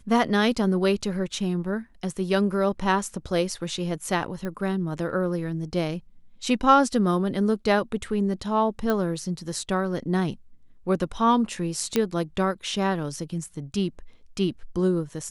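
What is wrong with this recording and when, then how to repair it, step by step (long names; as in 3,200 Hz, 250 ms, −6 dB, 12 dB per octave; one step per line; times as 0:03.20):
0:04.45: click −20 dBFS
0:08.90: click −13 dBFS
0:11.96: click −8 dBFS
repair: click removal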